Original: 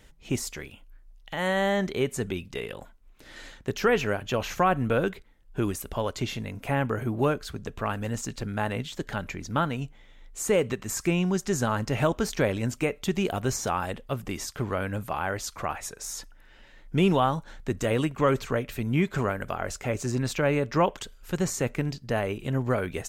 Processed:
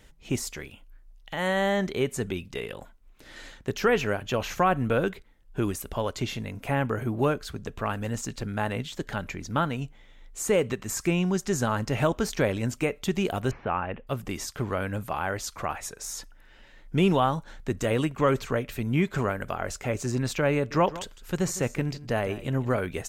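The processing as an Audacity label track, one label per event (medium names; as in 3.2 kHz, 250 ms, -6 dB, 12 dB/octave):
13.510000	14.070000	elliptic low-pass 2.7 kHz, stop band 70 dB
20.550000	22.780000	delay 156 ms -16.5 dB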